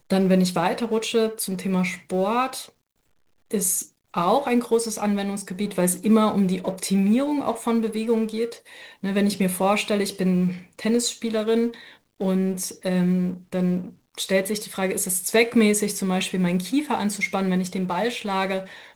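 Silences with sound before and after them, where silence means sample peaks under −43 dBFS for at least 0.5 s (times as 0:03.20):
0:02.69–0:03.51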